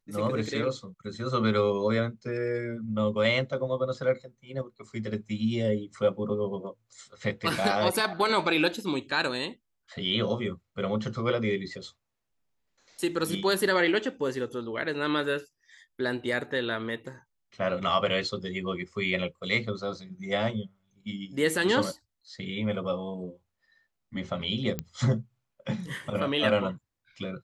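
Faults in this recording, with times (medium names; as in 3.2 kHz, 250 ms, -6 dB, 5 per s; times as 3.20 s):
24.79 s: pop -16 dBFS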